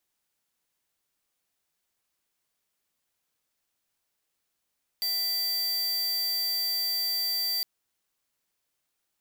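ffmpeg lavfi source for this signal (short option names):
-f lavfi -i "aevalsrc='0.0376*(2*lt(mod(4680*t,1),0.5)-1)':d=2.61:s=44100"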